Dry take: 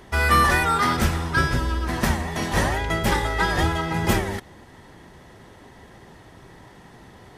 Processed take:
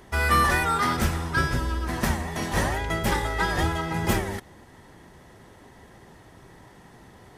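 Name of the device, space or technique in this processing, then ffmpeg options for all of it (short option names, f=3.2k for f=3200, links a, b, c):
exciter from parts: -filter_complex "[0:a]asplit=2[a][b];[b]highpass=f=4.6k:p=1,asoftclip=type=tanh:threshold=-33.5dB,highpass=3.6k,volume=-6dB[c];[a][c]amix=inputs=2:normalize=0,volume=-3dB"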